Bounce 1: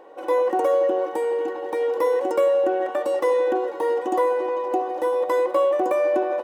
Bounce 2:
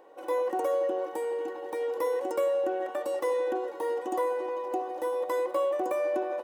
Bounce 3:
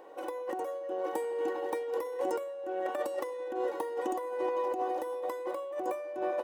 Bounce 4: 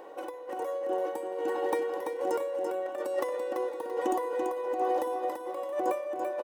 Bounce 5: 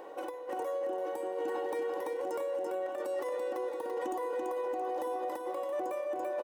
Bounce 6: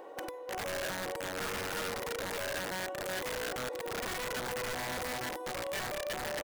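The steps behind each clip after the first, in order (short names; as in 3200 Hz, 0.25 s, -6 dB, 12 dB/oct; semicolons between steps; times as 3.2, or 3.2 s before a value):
high shelf 6600 Hz +8.5 dB; gain -8 dB
limiter -23 dBFS, peak gain reduction 5 dB; negative-ratio compressor -33 dBFS, ratio -0.5
tremolo 1.2 Hz, depth 71%; feedback echo 0.337 s, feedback 34%, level -6 dB; gain +5 dB
limiter -27.5 dBFS, peak gain reduction 10.5 dB
wrapped overs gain 30 dB; gain -1.5 dB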